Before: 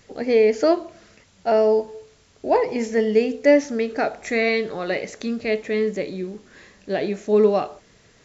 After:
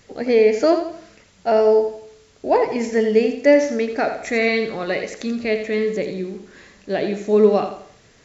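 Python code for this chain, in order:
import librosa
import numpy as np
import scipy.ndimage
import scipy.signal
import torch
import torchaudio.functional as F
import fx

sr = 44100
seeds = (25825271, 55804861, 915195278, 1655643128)

y = fx.echo_feedback(x, sr, ms=85, feedback_pct=38, wet_db=-9)
y = y * librosa.db_to_amplitude(1.5)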